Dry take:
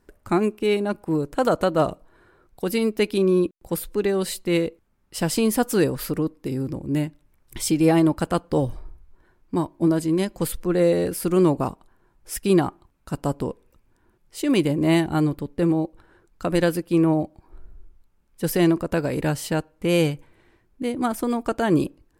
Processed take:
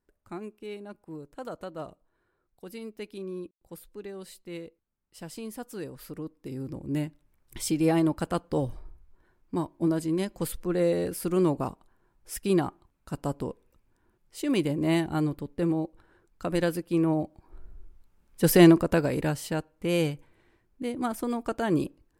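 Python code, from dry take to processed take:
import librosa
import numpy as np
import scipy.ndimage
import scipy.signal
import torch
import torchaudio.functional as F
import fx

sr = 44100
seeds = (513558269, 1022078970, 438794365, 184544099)

y = fx.gain(x, sr, db=fx.line((5.8, -18.0), (6.88, -6.0), (17.05, -6.0), (18.62, 3.5), (19.41, -6.0)))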